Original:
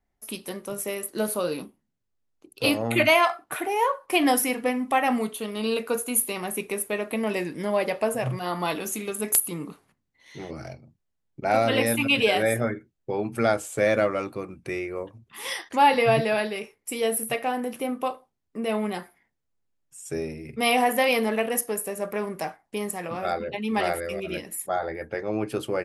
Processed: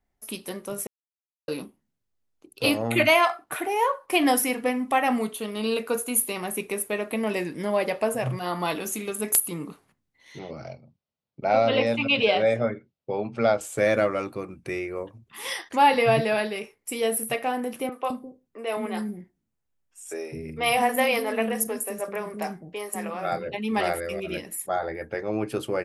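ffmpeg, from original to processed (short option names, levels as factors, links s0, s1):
-filter_complex "[0:a]asettb=1/sr,asplit=3[s0][s1][s2];[s0]atrim=end=10.394[s3];[s1]atrim=start=10.39:end=13.61,asetpts=PTS-STARTPTS,afade=t=in:d=0.004:c=qsin,afade=t=out:st=3.216:d=0.004:c=qsin,highpass=110,equalizer=f=330:t=q:w=4:g=-7,equalizer=f=570:t=q:w=4:g=4,equalizer=f=1700:t=q:w=4:g=-8,lowpass=f=5100:w=0.5412,lowpass=f=5100:w=1.3066[s4];[s2]atrim=start=13.606[s5];[s3][s4]acrossfade=d=0.004:c1=hsin:c2=qsin[s6];[s6][s5]acrossfade=d=0.004:c1=qsin:c2=hsin,asettb=1/sr,asplit=3[s7][s8][s9];[s7]atrim=end=17.894[s10];[s8]atrim=start=17.89:end=23.47,asetpts=PTS-STARTPTS,afade=t=in:d=0.004:c=qsin,afade=t=out:st=5.576:d=0.004:c=qsin,acrossover=split=330|4300[s11][s12][s13];[s13]adelay=30[s14];[s11]adelay=210[s15];[s15][s12][s14]amix=inputs=3:normalize=0,atrim=end_sample=246078[s16];[s9]atrim=start=23.466[s17];[s10][s16]acrossfade=d=0.004:c1=hsin:c2=qsin[s18];[s18][s17]acrossfade=d=0.004:c1=qsin:c2=hsin,asplit=3[s19][s20][s21];[s19]atrim=end=0.87,asetpts=PTS-STARTPTS,afade=t=out:st=0.866:d=0.004:c=hsin[s22];[s20]atrim=start=0.87:end=1.48,asetpts=PTS-STARTPTS,volume=0[s23];[s21]atrim=start=1.48,asetpts=PTS-STARTPTS,afade=t=in:d=0.004:c=hsin[s24];[s22][s23][s24]concat=n=3:v=0:a=1"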